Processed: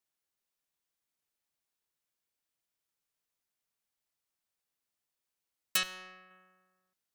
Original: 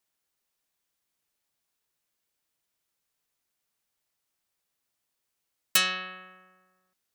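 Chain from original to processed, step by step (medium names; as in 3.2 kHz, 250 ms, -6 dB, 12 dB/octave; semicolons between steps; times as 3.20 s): 5.83–6.31 s: valve stage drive 35 dB, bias 0.6; trim -7 dB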